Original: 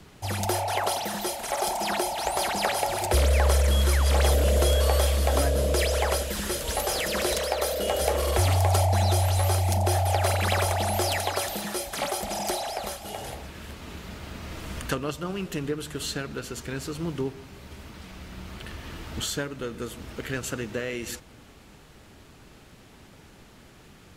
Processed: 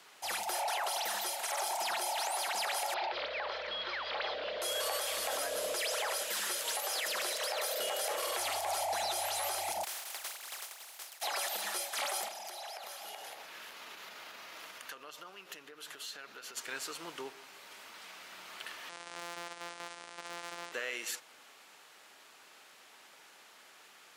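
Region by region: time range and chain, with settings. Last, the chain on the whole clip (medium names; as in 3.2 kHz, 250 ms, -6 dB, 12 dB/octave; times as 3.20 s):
2.94–4.62 s: steep low-pass 4.5 kHz 48 dB/octave + compression 2:1, threshold -25 dBFS
9.83–11.21 s: spectral contrast reduction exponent 0.29 + expander -13 dBFS
12.28–16.57 s: compression 16:1, threshold -36 dBFS + peaking EQ 8.2 kHz -6.5 dB 0.36 oct
18.89–20.72 s: sorted samples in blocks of 256 samples + steep low-pass 10 kHz 96 dB/octave + hard clipper -26 dBFS
whole clip: high-pass 810 Hz 12 dB/octave; peak limiter -24.5 dBFS; trim -1 dB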